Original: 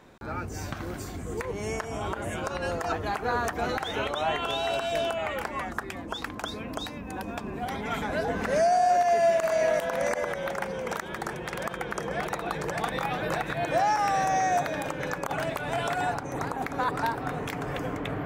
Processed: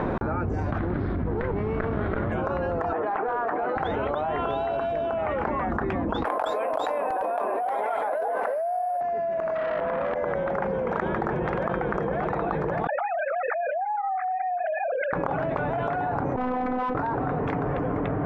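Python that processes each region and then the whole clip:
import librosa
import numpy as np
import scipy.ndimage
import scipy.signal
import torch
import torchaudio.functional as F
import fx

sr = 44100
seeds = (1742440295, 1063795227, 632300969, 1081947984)

y = fx.chain(x, sr, fx.lower_of_two(delay_ms=0.54),
    fx.steep_lowpass(hz=5000.0, slope=72), at=(0.78, 2.32))
y = fx.chain(y, sr, fx.bandpass_edges(low_hz=410.0, high_hz=2500.0),
    fx.clip_hard(threshold_db=-23.5), at=(2.93, 3.76))
y = fx.chain(y, sr, fx.ladder_highpass(hz=530.0, resonance_pct=50),
    fx.resample_bad(factor=4, down='none', up='zero_stuff'),
    fx.env_flatten(amount_pct=100), at=(6.25, 9.01))
y = fx.chain(y, sr, fx.peak_eq(hz=7500.0, db=-12.0, octaves=1.2),
    fx.transformer_sat(knee_hz=2300.0), at=(9.55, 10.16))
y = fx.chain(y, sr, fx.sine_speech(),
    fx.flanger_cancel(hz=1.3, depth_ms=2.8), at=(12.87, 15.13))
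y = fx.chain(y, sr, fx.bessel_lowpass(hz=1700.0, order=2),
    fx.tube_stage(drive_db=41.0, bias=0.75),
    fx.robotise(hz=252.0), at=(16.36, 16.95))
y = scipy.signal.sosfilt(scipy.signal.butter(2, 1200.0, 'lowpass', fs=sr, output='sos'), y)
y = fx.env_flatten(y, sr, amount_pct=100)
y = y * 10.0 ** (-7.0 / 20.0)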